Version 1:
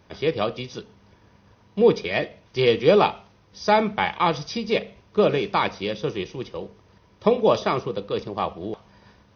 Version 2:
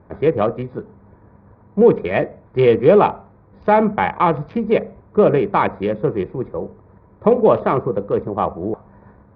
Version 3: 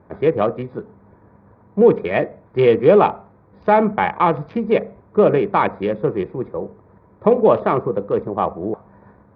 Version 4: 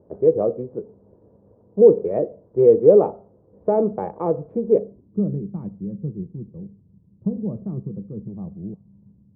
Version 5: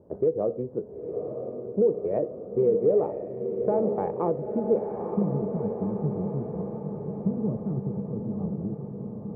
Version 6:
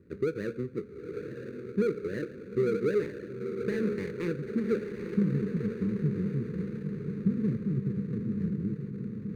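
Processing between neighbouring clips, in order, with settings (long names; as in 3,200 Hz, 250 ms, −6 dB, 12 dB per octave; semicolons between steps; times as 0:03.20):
adaptive Wiener filter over 15 samples; Bessel low-pass filter 1,700 Hz, order 4; in parallel at +2 dB: brickwall limiter −14 dBFS, peak gain reduction 8.5 dB; on the sum: level +1 dB
low-shelf EQ 66 Hz −11.5 dB
low-pass filter sweep 500 Hz → 180 Hz, 0:04.68–0:05.32; level −6.5 dB
downward compressor 3 to 1, threshold −23 dBFS, peak gain reduction 12.5 dB; feedback delay with all-pass diffusion 937 ms, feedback 63%, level −6 dB
running median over 41 samples; Butterworth band-reject 730 Hz, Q 0.78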